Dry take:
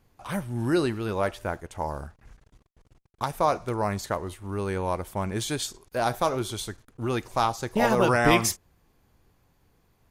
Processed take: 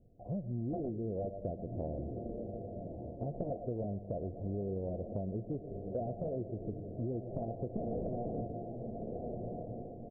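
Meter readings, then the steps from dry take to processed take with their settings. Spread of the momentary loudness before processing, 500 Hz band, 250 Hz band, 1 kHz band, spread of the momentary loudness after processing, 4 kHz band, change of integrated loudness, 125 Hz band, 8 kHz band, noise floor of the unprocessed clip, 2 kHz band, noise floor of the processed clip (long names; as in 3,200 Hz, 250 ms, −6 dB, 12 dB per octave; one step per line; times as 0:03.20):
13 LU, −10.5 dB, −9.0 dB, −19.5 dB, 5 LU, below −40 dB, −12.5 dB, −6.5 dB, below −40 dB, −66 dBFS, below −40 dB, −48 dBFS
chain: repeating echo 115 ms, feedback 46%, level −16 dB
wrap-around overflow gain 17.5 dB
Chebyshev low-pass with heavy ripple 710 Hz, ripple 3 dB
on a send: feedback delay with all-pass diffusion 1,285 ms, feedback 43%, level −12.5 dB
on the sum: downward compressor 6 to 1, threshold −37 dBFS, peak gain reduction 12.5 dB
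level +2.5 dB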